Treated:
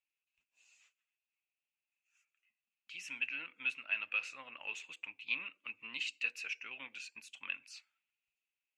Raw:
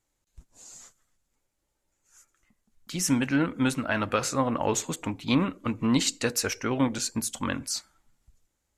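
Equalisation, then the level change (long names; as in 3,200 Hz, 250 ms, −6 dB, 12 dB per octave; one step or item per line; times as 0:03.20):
resonant band-pass 2,600 Hz, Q 13
+5.0 dB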